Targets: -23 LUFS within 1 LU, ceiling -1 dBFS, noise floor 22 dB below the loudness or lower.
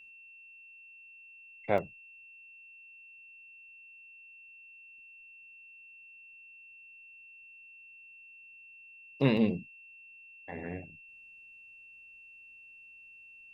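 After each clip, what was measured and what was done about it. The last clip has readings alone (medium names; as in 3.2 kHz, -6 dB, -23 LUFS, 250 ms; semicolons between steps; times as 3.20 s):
dropouts 2; longest dropout 2.7 ms; steady tone 2.7 kHz; tone level -51 dBFS; loudness -33.0 LUFS; peak level -11.0 dBFS; loudness target -23.0 LUFS
-> interpolate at 1.78/9.37 s, 2.7 ms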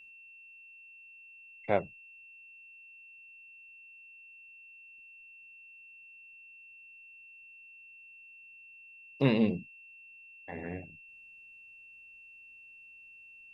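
dropouts 0; steady tone 2.7 kHz; tone level -51 dBFS
-> band-stop 2.7 kHz, Q 30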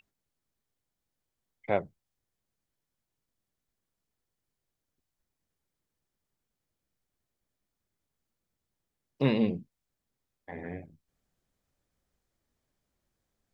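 steady tone not found; loudness -31.0 LUFS; peak level -11.0 dBFS; loudness target -23.0 LUFS
-> trim +8 dB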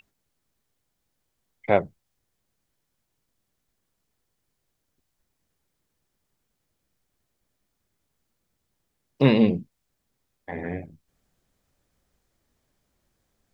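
loudness -23.0 LUFS; peak level -3.0 dBFS; noise floor -78 dBFS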